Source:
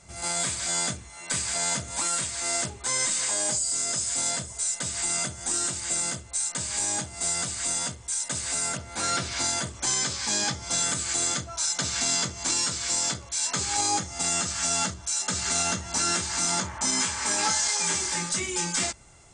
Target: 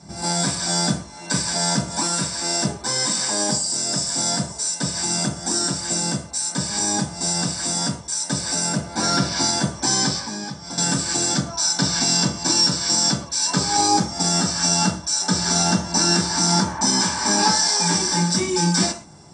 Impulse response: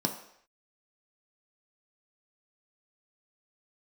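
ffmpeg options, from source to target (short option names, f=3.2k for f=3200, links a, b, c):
-filter_complex "[0:a]asettb=1/sr,asplit=3[a][b][c];[a]atrim=end=10.194[d];[b]atrim=start=10.19:end=10.78,asetpts=PTS-STARTPTS,afade=t=in:d=0.004:c=qsin,afade=t=out:st=0.586:d=0.004:c=qsin,acrossover=split=1200|2500[e][f][g];[e]acompressor=threshold=-45dB:ratio=4[h];[f]acompressor=threshold=-49dB:ratio=4[i];[g]acompressor=threshold=-42dB:ratio=4[j];[h][i][j]amix=inputs=3:normalize=0[k];[c]atrim=start=10.776[l];[d][k]acrossfade=d=0.004:c1=hsin:c2=qsin[m];[m][l]acrossfade=d=0.004:c1=qsin:c2=hsin[n];[1:a]atrim=start_sample=2205,atrim=end_sample=6174[o];[n][o]afir=irnorm=-1:irlink=0"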